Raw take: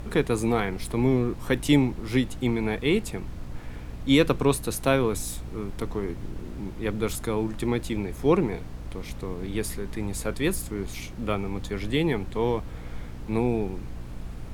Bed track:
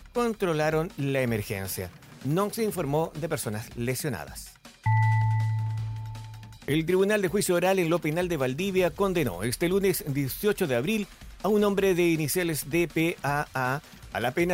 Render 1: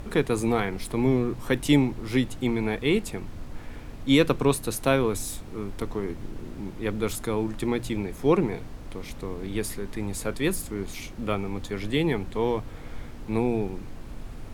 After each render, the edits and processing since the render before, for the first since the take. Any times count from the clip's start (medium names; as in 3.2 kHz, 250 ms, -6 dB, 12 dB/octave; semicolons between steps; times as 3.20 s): de-hum 60 Hz, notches 3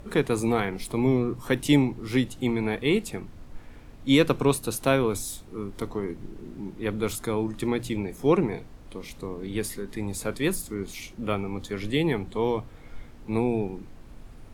noise print and reduce 7 dB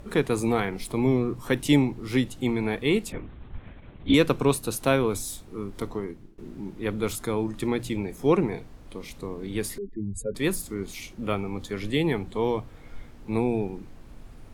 3.12–4.14 s: LPC vocoder at 8 kHz whisper; 5.93–6.38 s: fade out linear, to -23 dB; 9.78–10.35 s: spectral contrast enhancement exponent 3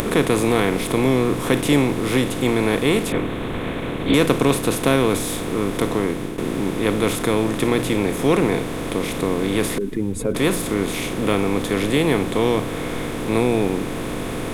spectral levelling over time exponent 0.4; upward compressor, threshold -22 dBFS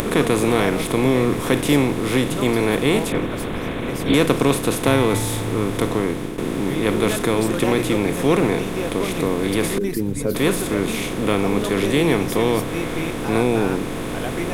add bed track -3.5 dB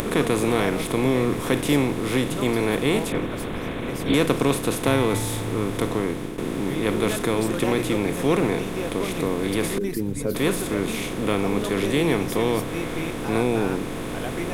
trim -3.5 dB